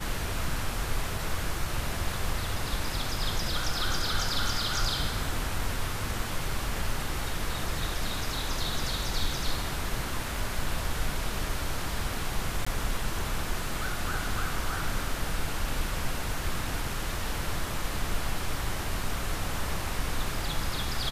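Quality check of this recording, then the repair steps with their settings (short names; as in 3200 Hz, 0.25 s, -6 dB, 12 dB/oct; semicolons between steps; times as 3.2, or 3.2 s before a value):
12.65–12.66 gap 15 ms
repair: interpolate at 12.65, 15 ms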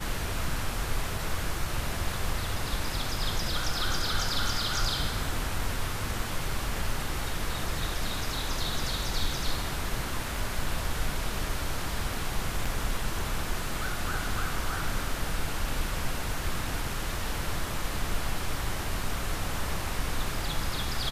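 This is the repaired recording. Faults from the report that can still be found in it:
none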